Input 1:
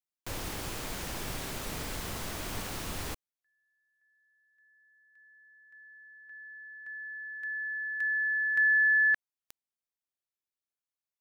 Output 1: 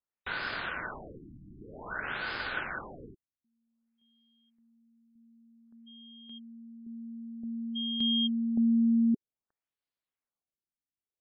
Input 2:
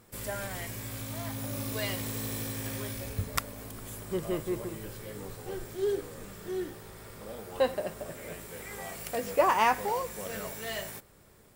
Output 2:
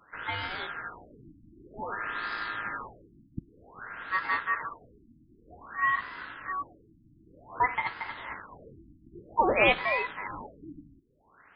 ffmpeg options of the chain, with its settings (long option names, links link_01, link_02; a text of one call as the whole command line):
ffmpeg -i in.wav -af "aeval=exprs='val(0)*sin(2*PI*1500*n/s)':channel_layout=same,afftfilt=real='re*lt(b*sr/1024,320*pow(5200/320,0.5+0.5*sin(2*PI*0.53*pts/sr)))':imag='im*lt(b*sr/1024,320*pow(5200/320,0.5+0.5*sin(2*PI*0.53*pts/sr)))':win_size=1024:overlap=0.75,volume=5.5dB" out.wav